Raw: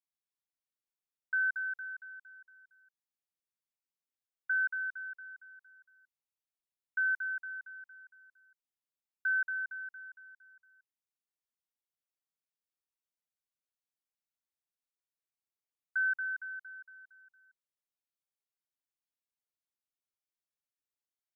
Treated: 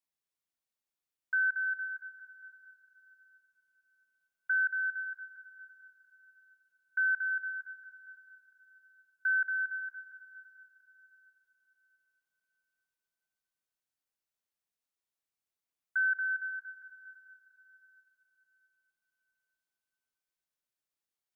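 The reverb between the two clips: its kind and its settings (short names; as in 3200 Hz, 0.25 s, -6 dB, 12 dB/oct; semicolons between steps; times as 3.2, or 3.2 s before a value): digital reverb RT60 4.2 s, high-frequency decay 0.9×, pre-delay 0.105 s, DRR 13 dB; gain +1.5 dB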